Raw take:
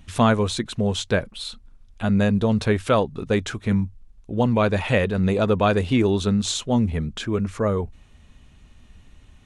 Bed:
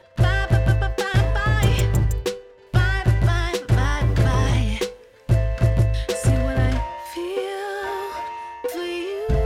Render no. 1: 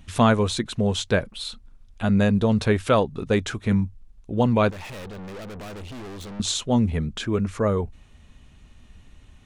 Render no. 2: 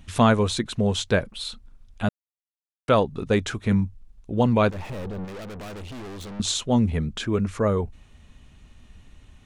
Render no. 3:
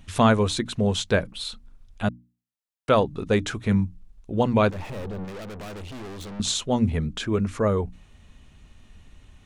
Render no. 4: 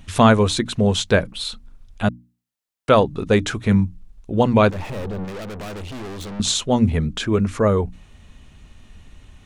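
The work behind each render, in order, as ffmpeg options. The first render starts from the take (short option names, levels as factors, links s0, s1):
-filter_complex "[0:a]asettb=1/sr,asplit=3[s0][s1][s2];[s0]atrim=end=4.704[s3];[s1]atrim=start=4.7:end=6.4,asetpts=PTS-STARTPTS,afade=t=in:d=0.004:c=qsin,afade=t=out:st=1.696:d=0.004:c=qsin,aeval=exprs='(tanh(63.1*val(0)+0.4)-tanh(0.4))/63.1':c=same[s4];[s2]atrim=start=6.396[s5];[s3][s4]acrossfade=d=0.004:c1=hsin:c2=qsin[s6];[s6][s5]acrossfade=d=0.004:c1=qsin:c2=hsin"
-filter_complex "[0:a]asettb=1/sr,asplit=3[s0][s1][s2];[s0]atrim=end=4.744[s3];[s1]atrim=start=4.74:end=5.25,asetpts=PTS-STARTPTS,afade=t=in:d=0.004:c=qsin,afade=t=out:st=0.506:d=0.004:c=qsin,tiltshelf=f=1200:g=6[s4];[s2]atrim=start=5.246[s5];[s3][s4]acrossfade=d=0.004:c1=hsin:c2=qsin[s6];[s6][s5]acrossfade=d=0.004:c1=qsin:c2=hsin,asplit=3[s7][s8][s9];[s7]atrim=end=2.09,asetpts=PTS-STARTPTS,afade=t=out:st=2.086:d=0.004:c=hsin[s10];[s8]atrim=start=2.09:end=2.88,asetpts=PTS-STARTPTS,volume=0[s11];[s9]atrim=start=2.88,asetpts=PTS-STARTPTS,afade=t=in:d=0.004:c=hsin[s12];[s10][s11][s12]concat=n=3:v=0:a=1"
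-af "bandreject=f=60:t=h:w=6,bandreject=f=120:t=h:w=6,bandreject=f=180:t=h:w=6,bandreject=f=240:t=h:w=6,bandreject=f=300:t=h:w=6"
-af "volume=1.78"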